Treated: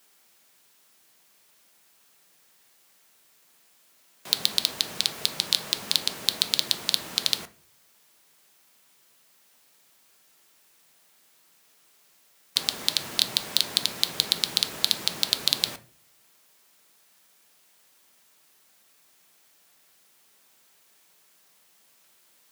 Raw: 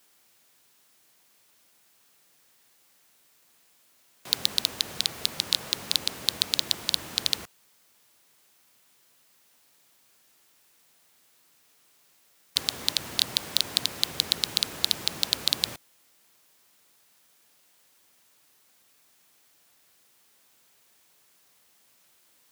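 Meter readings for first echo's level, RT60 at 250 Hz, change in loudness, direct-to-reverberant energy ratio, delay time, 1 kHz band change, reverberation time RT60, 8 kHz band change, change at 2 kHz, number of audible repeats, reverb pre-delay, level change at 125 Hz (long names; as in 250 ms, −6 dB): no echo audible, 0.65 s, +1.5 dB, 10.0 dB, no echo audible, +1.5 dB, 0.40 s, +1.5 dB, +2.0 dB, no echo audible, 3 ms, −1.0 dB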